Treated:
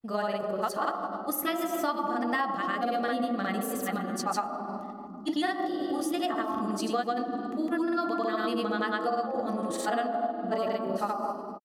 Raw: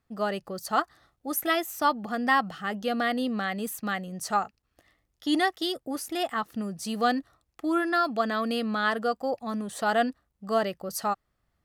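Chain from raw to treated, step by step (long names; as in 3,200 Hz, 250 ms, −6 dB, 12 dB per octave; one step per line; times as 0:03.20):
on a send at −11 dB: flat-topped bell 620 Hz +11 dB 2.3 octaves + convolution reverb, pre-delay 4 ms
on the sum: granular cloud, grains 20 per second, pitch spread up and down by 0 semitones
downward compressor 6 to 1, threshold −27 dBFS, peak gain reduction 11 dB
level +1.5 dB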